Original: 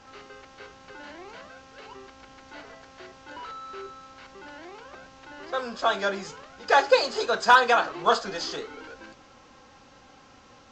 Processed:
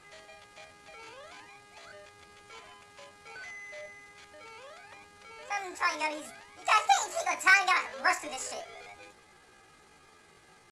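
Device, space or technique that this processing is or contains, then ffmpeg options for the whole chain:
chipmunk voice: -af "asetrate=68011,aresample=44100,atempo=0.64842,volume=-5dB"

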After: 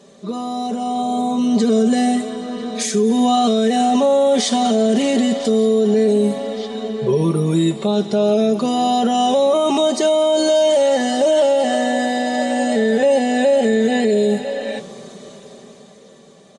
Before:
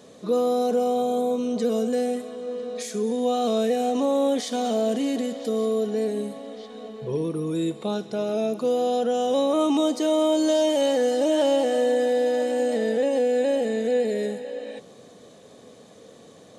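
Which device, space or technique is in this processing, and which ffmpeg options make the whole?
low-bitrate web radio: -af "aecho=1:1:5.1:0.85,dynaudnorm=framelen=160:gausssize=17:maxgain=16dB,alimiter=limit=-8.5dB:level=0:latency=1:release=48" -ar 22050 -c:a aac -b:a 48k

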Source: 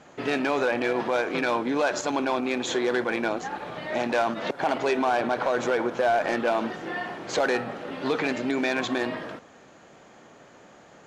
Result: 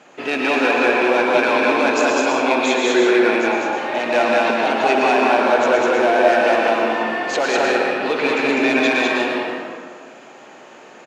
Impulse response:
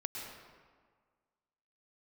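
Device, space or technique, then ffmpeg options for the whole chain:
stadium PA: -filter_complex "[0:a]highpass=240,equalizer=frequency=2600:width_type=o:width=0.33:gain=6.5,aecho=1:1:201.2|244.9:0.891|0.316[link_01];[1:a]atrim=start_sample=2205[link_02];[link_01][link_02]afir=irnorm=-1:irlink=0,volume=6dB"

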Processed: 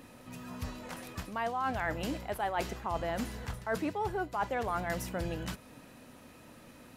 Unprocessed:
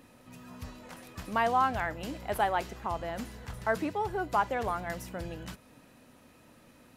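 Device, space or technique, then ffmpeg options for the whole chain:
compression on the reversed sound: -af "areverse,acompressor=threshold=-33dB:ratio=16,areverse,volume=4dB"

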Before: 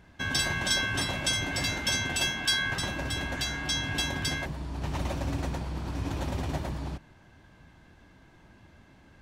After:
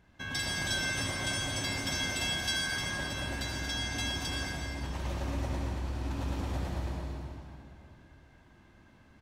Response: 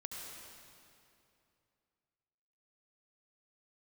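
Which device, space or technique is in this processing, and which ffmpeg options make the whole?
cave: -filter_complex "[0:a]aecho=1:1:229:0.376[link_01];[1:a]atrim=start_sample=2205[link_02];[link_01][link_02]afir=irnorm=-1:irlink=0,volume=-2.5dB"

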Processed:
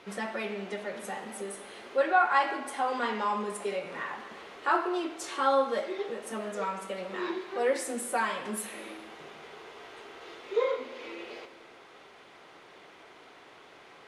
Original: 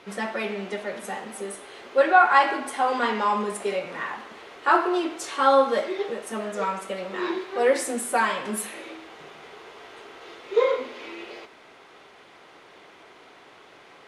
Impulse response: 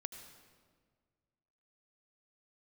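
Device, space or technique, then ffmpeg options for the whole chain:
compressed reverb return: -filter_complex "[0:a]asplit=2[link_01][link_02];[1:a]atrim=start_sample=2205[link_03];[link_02][link_03]afir=irnorm=-1:irlink=0,acompressor=threshold=-36dB:ratio=6,volume=1.5dB[link_04];[link_01][link_04]amix=inputs=2:normalize=0,volume=-8dB"

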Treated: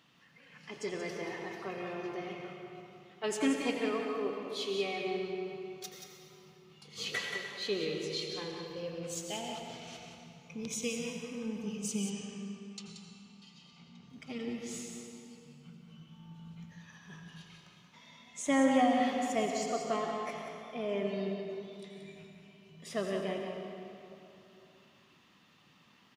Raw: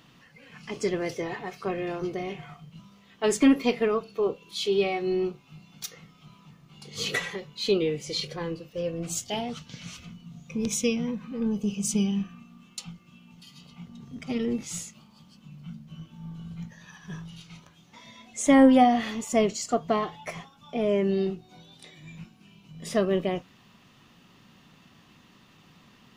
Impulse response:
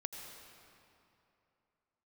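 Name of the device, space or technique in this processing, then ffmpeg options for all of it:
PA in a hall: -filter_complex "[0:a]highpass=frequency=120:poles=1,equalizer=frequency=2500:width_type=o:width=2.9:gain=4,aecho=1:1:180:0.398[link_01];[1:a]atrim=start_sample=2205[link_02];[link_01][link_02]afir=irnorm=-1:irlink=0,asettb=1/sr,asplit=3[link_03][link_04][link_05];[link_03]atrim=end=12.104[link_06];[link_04]atrim=start=12.1:end=14.1,asetpts=PTS-STARTPTS,afade=type=in:duration=0.004:curve=qsin,afade=type=out:start_time=1.996:duration=0.004:curve=qsin,lowpass=frequency=7900:width=0.5412,lowpass=frequency=7900:width=1.3066[link_07];[link_05]atrim=start=14.096[link_08];[link_06][link_07]acrossfade=duration=0.004:curve1=hsin:curve2=qsin[link_09];[link_09][link_08]acrossfade=duration=0.004:curve1=qsin:curve2=hsin,volume=-8dB"

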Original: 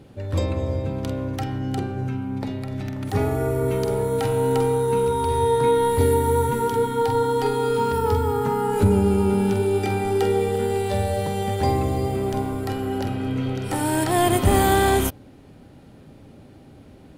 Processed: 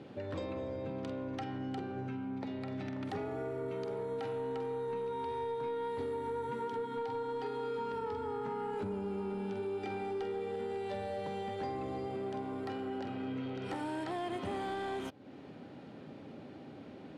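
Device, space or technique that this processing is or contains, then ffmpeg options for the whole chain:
AM radio: -filter_complex "[0:a]asettb=1/sr,asplit=3[link_01][link_02][link_03];[link_01]atrim=end=4.414[link_04];[link_02]atrim=start=4.41:end=6.13,asetpts=PTS-STARTPTS,afade=type=in:duration=0.004:curve=qsin,afade=type=out:start_time=1.716:duration=0.004:curve=qsin,lowpass=12000[link_05];[link_03]atrim=start=6.126[link_06];[link_04][link_05]acrossfade=duration=0.004:curve1=hsin:curve2=qsin[link_07];[link_07][link_06]acrossfade=duration=0.004:curve1=qsin:curve2=hsin,highpass=190,lowpass=4000,acompressor=threshold=-37dB:ratio=4,asoftclip=type=tanh:threshold=-29dB"

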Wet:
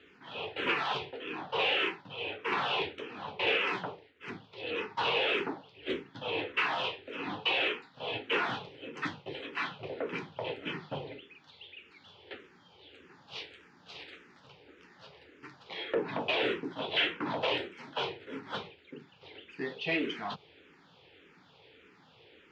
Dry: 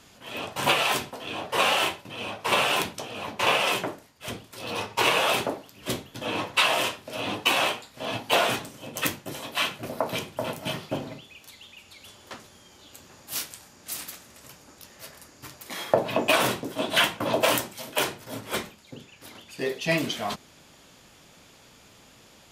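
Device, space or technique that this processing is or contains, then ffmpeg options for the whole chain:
barber-pole phaser into a guitar amplifier: -filter_complex "[0:a]asplit=2[link_01][link_02];[link_02]afreqshift=-1.7[link_03];[link_01][link_03]amix=inputs=2:normalize=1,asoftclip=type=tanh:threshold=-21dB,highpass=110,equalizer=frequency=120:width_type=q:width=4:gain=-5,equalizer=frequency=220:width_type=q:width=4:gain=-8,equalizer=frequency=430:width_type=q:width=4:gain=6,equalizer=frequency=630:width_type=q:width=4:gain=-9,equalizer=frequency=1100:width_type=q:width=4:gain=-5,lowpass=frequency=3500:width=0.5412,lowpass=frequency=3500:width=1.3066"

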